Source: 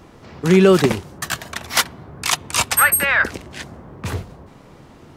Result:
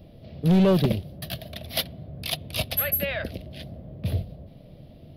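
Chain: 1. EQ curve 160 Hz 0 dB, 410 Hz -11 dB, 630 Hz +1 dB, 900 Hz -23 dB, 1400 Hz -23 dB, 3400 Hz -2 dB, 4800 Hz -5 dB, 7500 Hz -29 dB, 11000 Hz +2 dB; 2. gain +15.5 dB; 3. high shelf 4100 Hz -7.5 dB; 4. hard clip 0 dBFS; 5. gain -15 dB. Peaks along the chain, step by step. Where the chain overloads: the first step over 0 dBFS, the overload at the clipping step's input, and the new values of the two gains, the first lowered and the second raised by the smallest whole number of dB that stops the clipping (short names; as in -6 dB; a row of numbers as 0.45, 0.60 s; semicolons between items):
-7.0, +8.5, +8.5, 0.0, -15.0 dBFS; step 2, 8.5 dB; step 2 +6.5 dB, step 5 -6 dB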